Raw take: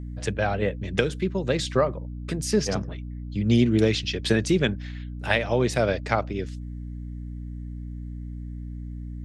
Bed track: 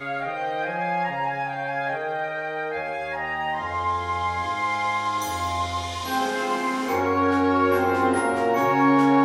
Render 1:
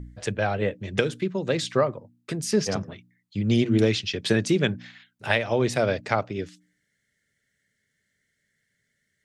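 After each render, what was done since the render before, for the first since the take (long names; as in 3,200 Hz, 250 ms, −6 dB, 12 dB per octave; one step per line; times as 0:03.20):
hum removal 60 Hz, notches 5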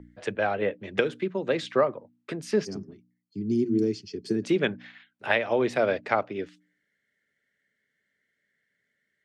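0:02.65–0:04.43: gain on a spectral selection 440–4,200 Hz −20 dB
three-way crossover with the lows and the highs turned down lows −15 dB, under 210 Hz, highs −14 dB, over 3,400 Hz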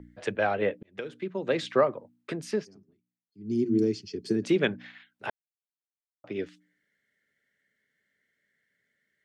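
0:00.83–0:01.59: fade in
0:02.33–0:03.74: duck −19.5 dB, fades 0.36 s equal-power
0:05.30–0:06.24: silence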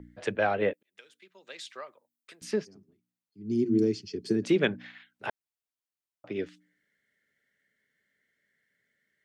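0:00.73–0:02.42: first difference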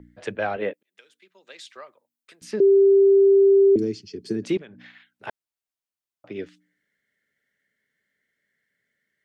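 0:00.56–0:01.77: high-pass filter 160 Hz
0:02.60–0:03.76: beep over 393 Hz −11.5 dBFS
0:04.57–0:05.27: downward compressor 12 to 1, threshold −39 dBFS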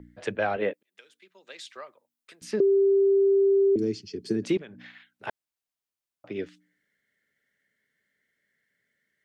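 downward compressor, threshold −19 dBFS, peak gain reduction 5.5 dB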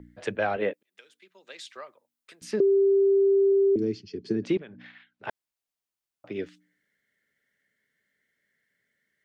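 0:03.52–0:05.29: high-frequency loss of the air 120 metres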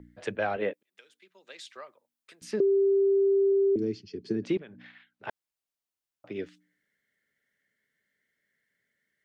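level −2.5 dB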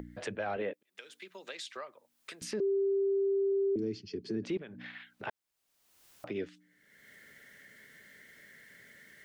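brickwall limiter −26 dBFS, peak gain reduction 10 dB
upward compression, threshold −37 dBFS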